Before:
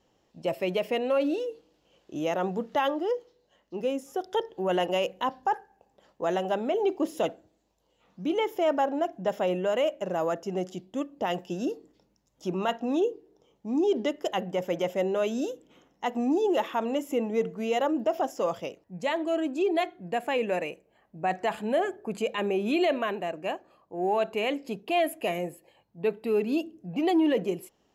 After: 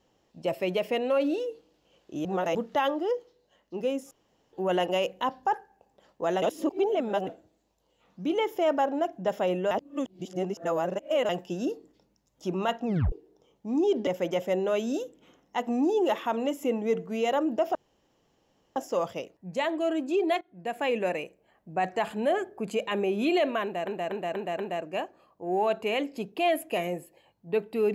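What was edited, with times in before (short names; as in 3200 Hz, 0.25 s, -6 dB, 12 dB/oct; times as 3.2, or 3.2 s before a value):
2.25–2.55 reverse
4.11–4.53 room tone
6.42–7.27 reverse
9.71–11.29 reverse
12.86 tape stop 0.26 s
14.07–14.55 cut
18.23 insert room tone 1.01 s
19.88–20.32 fade in, from -20 dB
23.1 stutter 0.24 s, 5 plays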